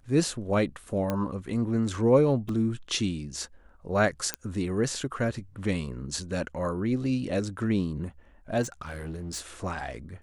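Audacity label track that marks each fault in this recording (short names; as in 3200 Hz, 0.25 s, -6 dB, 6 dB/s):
1.100000	1.100000	pop -15 dBFS
2.490000	2.490000	gap 2.9 ms
4.340000	4.340000	pop -11 dBFS
8.620000	9.400000	clipped -31 dBFS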